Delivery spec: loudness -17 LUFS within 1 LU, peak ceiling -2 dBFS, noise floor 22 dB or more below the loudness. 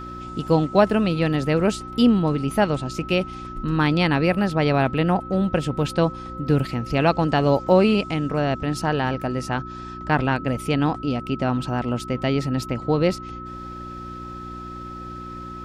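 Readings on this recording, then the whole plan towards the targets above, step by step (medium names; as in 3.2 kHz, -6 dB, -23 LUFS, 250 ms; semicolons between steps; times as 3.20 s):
hum 60 Hz; highest harmonic 360 Hz; hum level -37 dBFS; steady tone 1.3 kHz; tone level -35 dBFS; loudness -22.0 LUFS; peak level -3.5 dBFS; loudness target -17.0 LUFS
-> de-hum 60 Hz, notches 6; band-stop 1.3 kHz, Q 30; trim +5 dB; peak limiter -2 dBFS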